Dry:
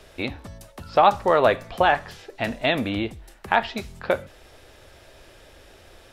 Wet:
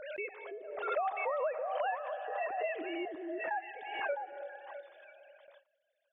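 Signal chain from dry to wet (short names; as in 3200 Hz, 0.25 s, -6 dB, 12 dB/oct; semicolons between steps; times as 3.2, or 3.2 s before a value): sine-wave speech; digital reverb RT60 2.6 s, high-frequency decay 0.5×, pre-delay 45 ms, DRR 17 dB; compressor 3:1, threshold -33 dBFS, peak gain reduction 15.5 dB; 0.51–0.92 tilt shelf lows +8.5 dB, about 770 Hz; 2.09–2.5 doubler 14 ms -4 dB; 3.05–3.87 fixed phaser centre 1700 Hz, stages 8; delay with a stepping band-pass 0.329 s, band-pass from 340 Hz, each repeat 1.4 oct, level -2 dB; gate with hold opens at -45 dBFS; bell 200 Hz -3 dB 1.1 oct; backwards sustainer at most 50 dB/s; gain -3.5 dB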